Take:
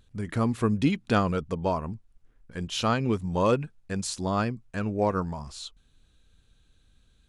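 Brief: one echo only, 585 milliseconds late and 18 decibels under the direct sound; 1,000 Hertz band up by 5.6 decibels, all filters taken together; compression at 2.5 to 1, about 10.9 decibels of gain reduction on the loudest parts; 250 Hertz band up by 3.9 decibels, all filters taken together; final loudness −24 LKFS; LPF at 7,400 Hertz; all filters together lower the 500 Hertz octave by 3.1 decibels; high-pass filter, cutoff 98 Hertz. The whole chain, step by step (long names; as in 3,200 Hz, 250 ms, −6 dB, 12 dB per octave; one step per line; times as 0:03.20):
high-pass filter 98 Hz
low-pass filter 7,400 Hz
parametric band 250 Hz +6.5 dB
parametric band 500 Hz −8 dB
parametric band 1,000 Hz +8.5 dB
downward compressor 2.5 to 1, threshold −33 dBFS
single-tap delay 585 ms −18 dB
level +10.5 dB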